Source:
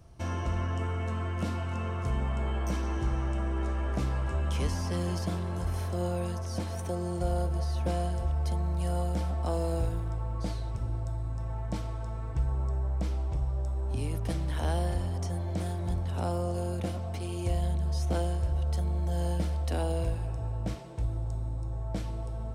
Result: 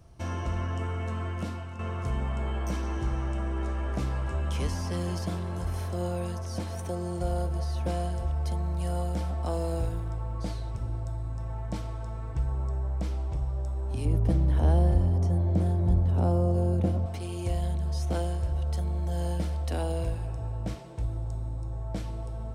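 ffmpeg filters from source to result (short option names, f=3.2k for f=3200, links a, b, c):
-filter_complex "[0:a]asettb=1/sr,asplit=3[a][b][c];[a]atrim=end=14.054[d];[b]atrim=start=14.05:end=17.06,asetpts=PTS-STARTPTS,afade=t=in:d=0.004:c=qsin,afade=t=out:st=3.006:d=0.004:c=qsin,tiltshelf=f=910:g=8[e];[c]atrim=start=17.056[f];[d][e]acrossfade=d=0.004:c1=hsin:c2=qsin[g];[g][f]acrossfade=d=0.004:c1=qsin:c2=hsin,asplit=2[h][i];[h]atrim=end=1.79,asetpts=PTS-STARTPTS,afade=t=out:st=1.29:d=0.5:silence=0.375837[j];[i]atrim=start=1.79,asetpts=PTS-STARTPTS,afade=t=in:d=0.004:c=hsin:silence=0.375837[k];[j][k]concat=n=2:v=0:a=1"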